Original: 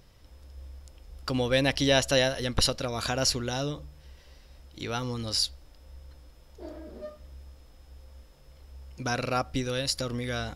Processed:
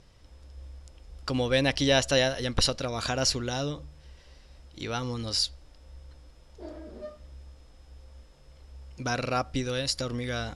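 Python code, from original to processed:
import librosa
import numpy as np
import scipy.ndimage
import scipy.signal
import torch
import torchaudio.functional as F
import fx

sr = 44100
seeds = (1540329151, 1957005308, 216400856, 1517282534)

y = scipy.signal.sosfilt(scipy.signal.butter(4, 9900.0, 'lowpass', fs=sr, output='sos'), x)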